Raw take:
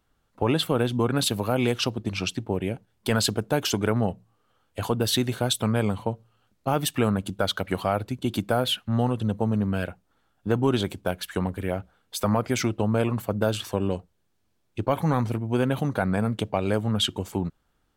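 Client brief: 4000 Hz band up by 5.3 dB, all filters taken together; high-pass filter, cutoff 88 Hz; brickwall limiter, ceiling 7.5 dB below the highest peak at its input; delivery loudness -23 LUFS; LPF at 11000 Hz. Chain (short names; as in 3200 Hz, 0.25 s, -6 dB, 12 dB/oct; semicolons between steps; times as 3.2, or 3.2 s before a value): HPF 88 Hz; LPF 11000 Hz; bell 4000 Hz +6.5 dB; gain +3.5 dB; limiter -9.5 dBFS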